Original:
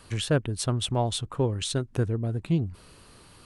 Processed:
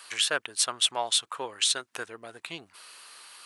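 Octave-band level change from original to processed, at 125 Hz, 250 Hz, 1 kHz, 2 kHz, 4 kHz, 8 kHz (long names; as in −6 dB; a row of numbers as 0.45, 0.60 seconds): −31.0, −18.5, +1.0, +6.5, +7.5, +7.5 decibels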